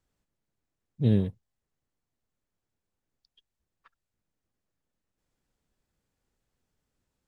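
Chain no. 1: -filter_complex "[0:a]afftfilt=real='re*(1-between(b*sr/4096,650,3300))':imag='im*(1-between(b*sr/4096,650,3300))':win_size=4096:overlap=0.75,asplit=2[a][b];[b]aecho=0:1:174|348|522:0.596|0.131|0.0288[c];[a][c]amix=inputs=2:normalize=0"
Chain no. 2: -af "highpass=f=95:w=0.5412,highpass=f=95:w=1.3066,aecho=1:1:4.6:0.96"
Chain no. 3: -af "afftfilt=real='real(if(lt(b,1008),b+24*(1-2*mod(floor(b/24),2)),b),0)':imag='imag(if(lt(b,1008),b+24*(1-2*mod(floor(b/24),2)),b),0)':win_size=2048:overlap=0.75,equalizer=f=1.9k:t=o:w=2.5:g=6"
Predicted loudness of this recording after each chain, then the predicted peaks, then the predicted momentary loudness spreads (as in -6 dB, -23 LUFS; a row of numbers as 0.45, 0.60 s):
-26.5, -24.5, -24.0 LUFS; -11.5, -12.0, -9.0 dBFS; 11, 8, 7 LU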